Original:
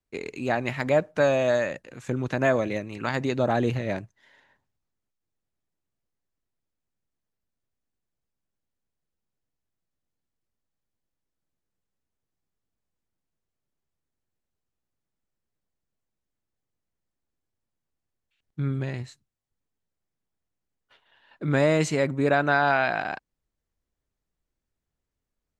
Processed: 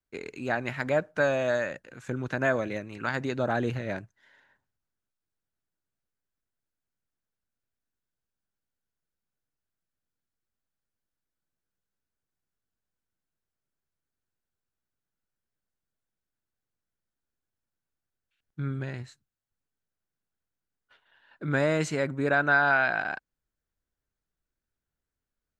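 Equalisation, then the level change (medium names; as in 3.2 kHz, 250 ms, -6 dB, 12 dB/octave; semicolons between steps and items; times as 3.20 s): peaking EQ 1.5 kHz +8 dB 0.36 oct; -4.5 dB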